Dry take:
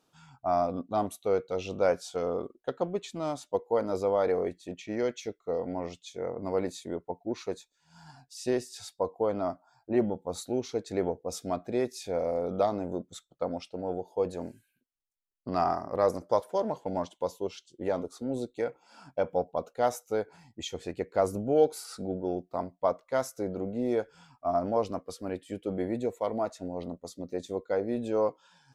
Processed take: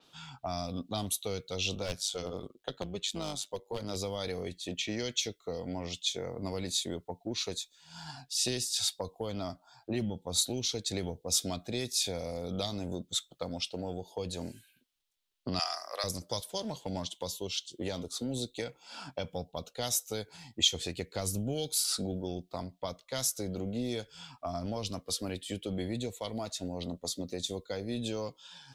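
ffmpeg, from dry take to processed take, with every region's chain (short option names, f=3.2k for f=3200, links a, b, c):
-filter_complex "[0:a]asettb=1/sr,asplit=3[a][b][c];[a]atrim=end=1.754[d];[b]atrim=start=1.75:end=3.96,asetpts=PTS-STARTPTS,afade=t=in:d=0.004:c=qsin,afade=t=out:st=2.206:d=0.004:c=qsin,tremolo=f=100:d=0.71,aeval=exprs='clip(val(0),-1,0.0668)':c=same[e];[c]atrim=start=3.956[f];[d][e]acrossfade=d=0.004:c1=hsin:c2=qsin[g];[g][f]acrossfade=d=0.004:c1=qsin:c2=hsin,asettb=1/sr,asplit=3[h][i][j];[h]atrim=end=15.594[k];[i]atrim=start=15.59:end=16.04,asetpts=PTS-STARTPTS,afade=t=in:d=0.004:c=qsin,afade=t=out:st=0.446:d=0.004:c=qsin,highpass=f=660:w=0.5412,highpass=f=660:w=1.3066,equalizer=f=870:w=4.3:g=-9.5,acontrast=32[l];[j]atrim=start=16.036[m];[k][l]acrossfade=d=0.004:c1=hsin:c2=qsin[n];[n][m]acrossfade=d=0.004:c1=qsin:c2=hsin,equalizer=f=3.5k:t=o:w=1.1:g=11.5,acrossover=split=170|3000[o][p][q];[p]acompressor=threshold=-41dB:ratio=10[r];[o][r][q]amix=inputs=3:normalize=0,adynamicequalizer=threshold=0.002:dfrequency=6100:dqfactor=0.7:tfrequency=6100:tqfactor=0.7:attack=5:release=100:ratio=0.375:range=4:mode=boostabove:tftype=highshelf,volume=5dB"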